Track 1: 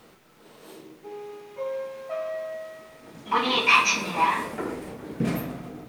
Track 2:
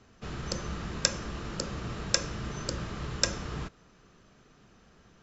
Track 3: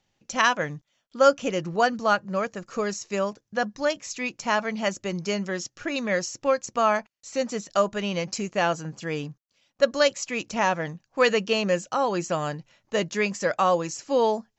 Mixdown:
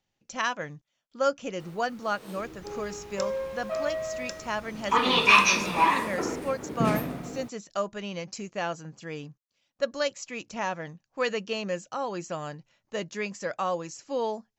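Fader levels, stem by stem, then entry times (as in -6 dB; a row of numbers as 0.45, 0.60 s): +0.5, -13.5, -7.5 dB; 1.60, 2.15, 0.00 s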